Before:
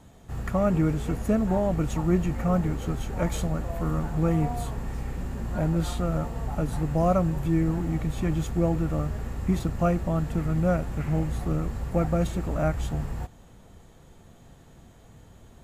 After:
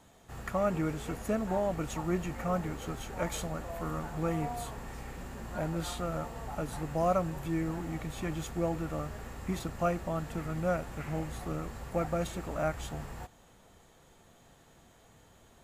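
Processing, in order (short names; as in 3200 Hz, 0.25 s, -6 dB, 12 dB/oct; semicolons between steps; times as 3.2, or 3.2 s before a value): low shelf 320 Hz -11.5 dB; gain -1.5 dB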